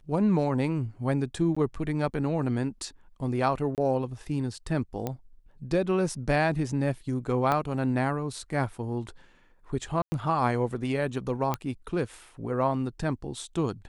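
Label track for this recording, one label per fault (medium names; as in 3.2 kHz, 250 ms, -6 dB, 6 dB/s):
1.550000	1.560000	dropout 15 ms
3.750000	3.780000	dropout 28 ms
5.070000	5.070000	pop -17 dBFS
7.520000	7.520000	pop -14 dBFS
10.020000	10.120000	dropout 100 ms
11.540000	11.540000	pop -14 dBFS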